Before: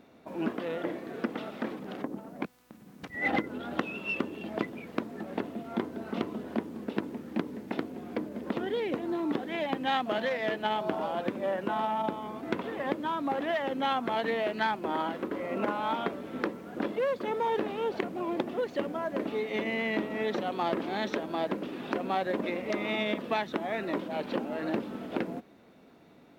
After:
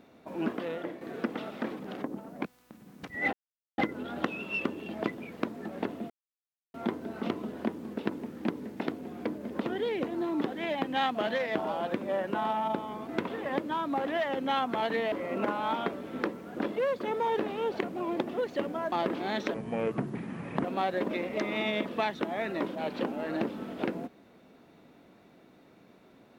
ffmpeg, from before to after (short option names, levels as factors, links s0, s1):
-filter_complex "[0:a]asplit=9[s0][s1][s2][s3][s4][s5][s6][s7][s8];[s0]atrim=end=1.01,asetpts=PTS-STARTPTS,afade=t=out:st=0.61:d=0.4:silence=0.421697[s9];[s1]atrim=start=1.01:end=3.33,asetpts=PTS-STARTPTS,afade=t=in:d=0.004:c=hsin:silence=0.421697,afade=t=out:st=2.316:d=0.004:c=hsin,apad=pad_dur=0.45[s10];[s2]atrim=start=3.33:end=5.65,asetpts=PTS-STARTPTS,afade=t=in:d=0.004:c=hsin,afade=t=out:st=2.316:d=0.004:c=hsin,apad=pad_dur=0.64[s11];[s3]atrim=start=5.65:end=10.462,asetpts=PTS-STARTPTS,afade=t=in:d=0.004:c=hsin[s12];[s4]atrim=start=10.888:end=14.462[s13];[s5]atrim=start=15.318:end=19.122[s14];[s6]atrim=start=20.588:end=21.214[s15];[s7]atrim=start=21.21:end=21.97,asetpts=PTS-STARTPTS,asetrate=30429,aresample=44100[s16];[s8]atrim=start=21.966[s17];[s9][s10][s11][s12]concat=n=4:v=0:a=1[s18];[s18][s13]acrossfade=d=0.004:c1=hsin:c2=hsin[s19];[s19][s14]acrossfade=d=0.004:c1=hsin:c2=hsin[s20];[s20][s15]acrossfade=d=0.004:c1=hsin:c2=hsin[s21];[s21][s16]acrossfade=d=0.004:c1=hsin:c2=hsin[s22];[s22][s17]acrossfade=d=0.004:c1=hsin:c2=hsin"